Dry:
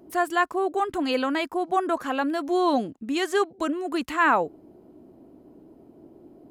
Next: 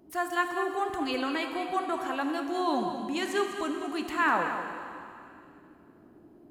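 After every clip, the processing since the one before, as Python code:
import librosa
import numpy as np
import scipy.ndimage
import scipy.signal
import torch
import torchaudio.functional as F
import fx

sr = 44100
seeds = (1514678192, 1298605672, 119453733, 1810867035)

y = fx.peak_eq(x, sr, hz=490.0, db=-5.0, octaves=1.2)
y = y + 10.0 ** (-10.0 / 20.0) * np.pad(y, (int(200 * sr / 1000.0), 0))[:len(y)]
y = fx.rev_plate(y, sr, seeds[0], rt60_s=2.6, hf_ratio=1.0, predelay_ms=0, drr_db=5.0)
y = y * librosa.db_to_amplitude(-4.5)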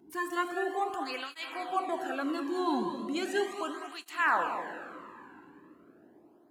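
y = fx.flanger_cancel(x, sr, hz=0.37, depth_ms=1.7)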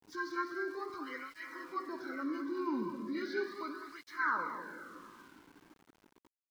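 y = fx.freq_compress(x, sr, knee_hz=1300.0, ratio=1.5)
y = fx.fixed_phaser(y, sr, hz=2700.0, stages=6)
y = np.where(np.abs(y) >= 10.0 ** (-55.5 / 20.0), y, 0.0)
y = y * librosa.db_to_amplitude(-2.0)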